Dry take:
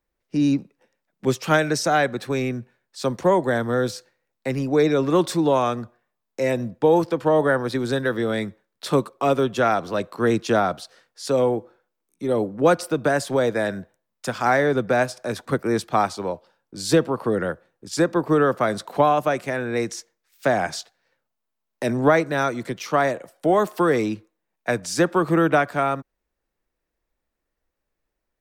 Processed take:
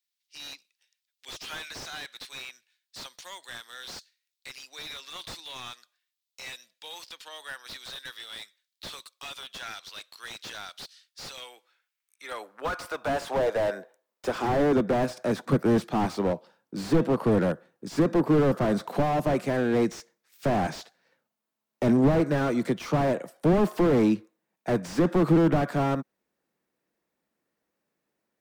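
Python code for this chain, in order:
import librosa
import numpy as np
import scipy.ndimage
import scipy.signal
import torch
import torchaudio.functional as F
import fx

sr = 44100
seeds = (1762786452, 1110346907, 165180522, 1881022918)

y = fx.filter_sweep_highpass(x, sr, from_hz=3700.0, to_hz=180.0, start_s=11.25, end_s=15.23, q=1.6)
y = fx.slew_limit(y, sr, full_power_hz=41.0)
y = y * librosa.db_to_amplitude(1.0)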